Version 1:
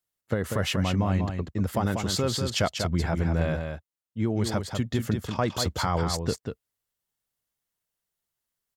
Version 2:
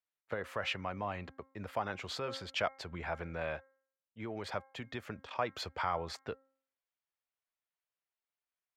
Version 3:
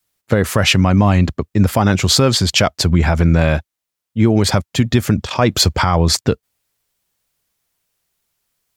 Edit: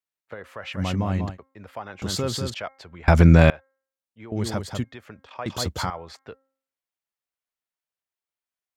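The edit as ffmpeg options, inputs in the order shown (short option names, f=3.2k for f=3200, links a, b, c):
-filter_complex "[0:a]asplit=4[a][b][c][d];[1:a]asplit=6[e][f][g][h][i][j];[e]atrim=end=0.82[k];[a]atrim=start=0.72:end=1.38[l];[f]atrim=start=1.28:end=2.022[m];[b]atrim=start=2.018:end=2.542[n];[g]atrim=start=2.538:end=3.082[o];[2:a]atrim=start=3.078:end=3.502[p];[h]atrim=start=3.498:end=4.322[q];[c]atrim=start=4.318:end=4.842[r];[i]atrim=start=4.838:end=5.462[s];[d]atrim=start=5.458:end=5.902[t];[j]atrim=start=5.898[u];[k][l]acrossfade=d=0.1:c1=tri:c2=tri[v];[v][m]acrossfade=d=0.1:c1=tri:c2=tri[w];[w][n]acrossfade=d=0.004:c1=hsin:c2=hsin[x];[x][o]acrossfade=d=0.004:c1=hsin:c2=hsin[y];[y][p]acrossfade=d=0.004:c1=hsin:c2=hsin[z];[z][q]acrossfade=d=0.004:c1=hsin:c2=hsin[aa];[aa][r]acrossfade=d=0.004:c1=hsin:c2=hsin[ab];[ab][s]acrossfade=d=0.004:c1=hsin:c2=hsin[ac];[ac][t]acrossfade=d=0.004:c1=hsin:c2=hsin[ad];[ad][u]acrossfade=d=0.004:c1=hsin:c2=hsin"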